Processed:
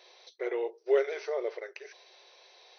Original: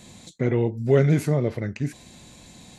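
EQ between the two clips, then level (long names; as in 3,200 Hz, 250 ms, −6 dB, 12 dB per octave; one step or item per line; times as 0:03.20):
linear-phase brick-wall band-pass 360–6,200 Hz
−5.0 dB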